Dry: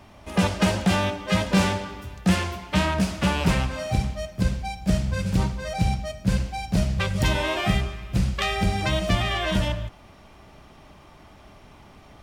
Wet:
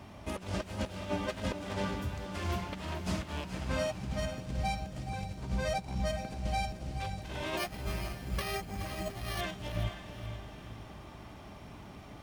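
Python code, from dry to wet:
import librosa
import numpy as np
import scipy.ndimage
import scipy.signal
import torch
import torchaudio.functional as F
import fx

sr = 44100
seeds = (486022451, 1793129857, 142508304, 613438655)

p1 = np.minimum(x, 2.0 * 10.0 ** (-20.5 / 20.0) - x)
p2 = fx.highpass(p1, sr, hz=120.0, slope=6)
p3 = fx.low_shelf(p2, sr, hz=250.0, db=8.5)
p4 = fx.over_compress(p3, sr, threshold_db=-28.0, ratio=-0.5)
p5 = p4 + fx.echo_diffused(p4, sr, ms=493, feedback_pct=41, wet_db=-10.0, dry=0)
p6 = fx.resample_bad(p5, sr, factor=6, down='filtered', up='hold', at=(7.57, 9.41))
p7 = fx.echo_crushed(p6, sr, ms=428, feedback_pct=35, bits=9, wet_db=-12.5)
y = F.gain(torch.from_numpy(p7), -7.5).numpy()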